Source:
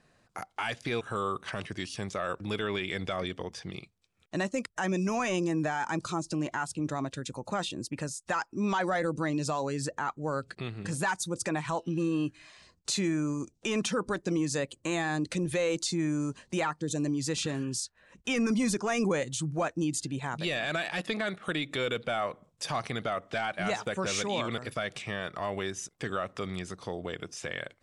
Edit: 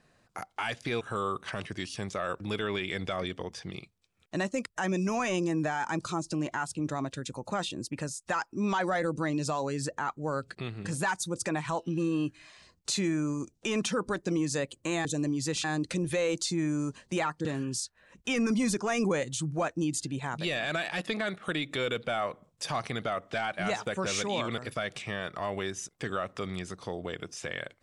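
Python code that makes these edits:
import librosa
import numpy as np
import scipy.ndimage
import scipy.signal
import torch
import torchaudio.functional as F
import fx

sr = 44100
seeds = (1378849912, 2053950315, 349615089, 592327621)

y = fx.edit(x, sr, fx.move(start_s=16.86, length_s=0.59, to_s=15.05), tone=tone)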